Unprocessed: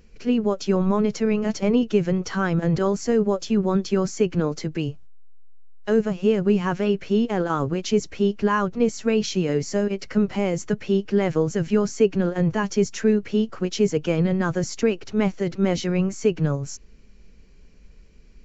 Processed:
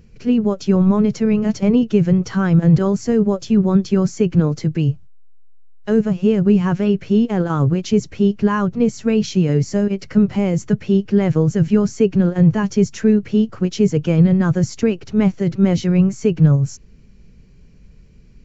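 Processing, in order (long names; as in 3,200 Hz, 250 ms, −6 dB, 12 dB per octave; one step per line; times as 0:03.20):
parametric band 120 Hz +14 dB 1.6 octaves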